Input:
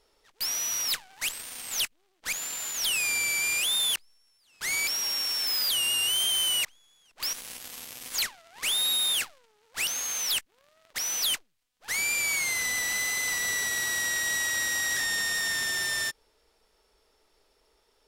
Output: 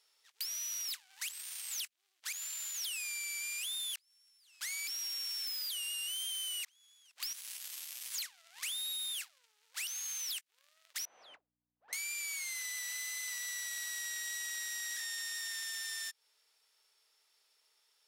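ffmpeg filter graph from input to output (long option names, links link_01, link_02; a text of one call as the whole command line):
ffmpeg -i in.wav -filter_complex "[0:a]asettb=1/sr,asplit=3[link_01][link_02][link_03];[link_01]atrim=end=11.054[link_04];[link_02]atrim=start=11.05:end=11.93,asetpts=PTS-STARTPTS,afade=type=in:duration=0.004:curve=qsin,afade=type=out:start_time=0.876:duration=0.004:curve=qsin,lowpass=frequency=640:width_type=q:width=1.7,aeval=exprs='val(0)+0.00126*(sin(2*PI*60*n/s)+sin(2*PI*2*60*n/s)/2+sin(2*PI*3*60*n/s)/3+sin(2*PI*4*60*n/s)/4+sin(2*PI*5*60*n/s)/5)':channel_layout=same[link_05];[link_03]atrim=start=11.926[link_06];[link_04][link_05]acrossfade=duration=0.004:curve1=hsin:curve2=qsin[link_07];[link_07][link_06]acrossfade=duration=0.004:curve1=qsin:curve2=hsin,highpass=frequency=740:poles=1,tiltshelf=frequency=1100:gain=-8.5,acompressor=threshold=-30dB:ratio=4,volume=-8.5dB" out.wav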